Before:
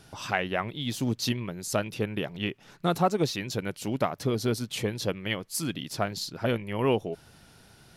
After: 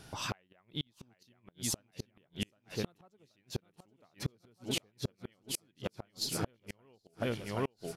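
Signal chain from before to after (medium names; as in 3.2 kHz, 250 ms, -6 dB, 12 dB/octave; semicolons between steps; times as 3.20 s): feedback delay 777 ms, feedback 46%, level -7.5 dB; inverted gate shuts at -21 dBFS, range -39 dB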